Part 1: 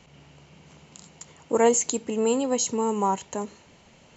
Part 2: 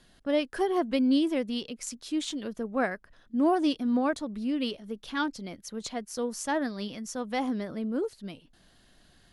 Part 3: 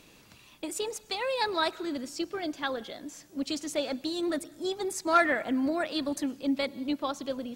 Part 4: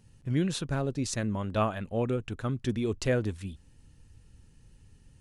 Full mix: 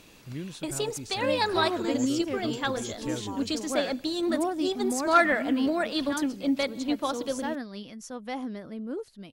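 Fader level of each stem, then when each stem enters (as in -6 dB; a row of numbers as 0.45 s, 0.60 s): -16.5 dB, -4.5 dB, +2.5 dB, -9.5 dB; 0.25 s, 0.95 s, 0.00 s, 0.00 s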